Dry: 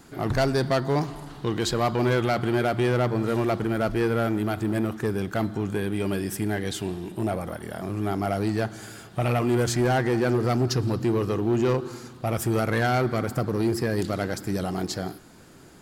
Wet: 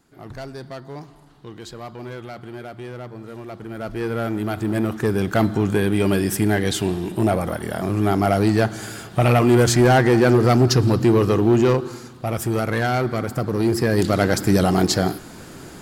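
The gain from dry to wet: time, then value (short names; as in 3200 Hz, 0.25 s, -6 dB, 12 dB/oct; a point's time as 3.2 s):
3.45 s -11.5 dB
4.08 s -1 dB
5.4 s +8 dB
11.46 s +8 dB
12.09 s +2 dB
13.36 s +2 dB
14.39 s +11 dB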